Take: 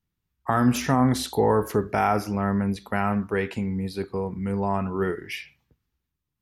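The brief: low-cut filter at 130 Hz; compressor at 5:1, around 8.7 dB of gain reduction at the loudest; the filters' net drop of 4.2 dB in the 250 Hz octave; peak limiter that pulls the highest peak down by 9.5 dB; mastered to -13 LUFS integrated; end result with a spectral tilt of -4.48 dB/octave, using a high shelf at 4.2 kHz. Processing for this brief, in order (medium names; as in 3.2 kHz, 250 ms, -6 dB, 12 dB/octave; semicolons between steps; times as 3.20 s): high-pass 130 Hz; peaking EQ 250 Hz -4.5 dB; treble shelf 4.2 kHz +6 dB; compression 5:1, threshold -27 dBFS; trim +20 dB; peak limiter -1.5 dBFS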